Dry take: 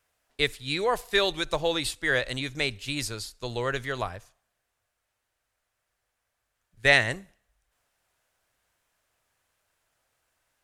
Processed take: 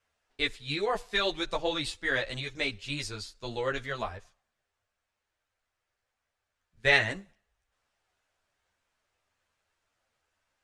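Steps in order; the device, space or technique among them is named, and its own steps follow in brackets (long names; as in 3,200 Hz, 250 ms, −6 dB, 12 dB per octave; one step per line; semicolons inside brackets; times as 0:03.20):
string-machine ensemble chorus (string-ensemble chorus; low-pass filter 6,700 Hz 12 dB per octave)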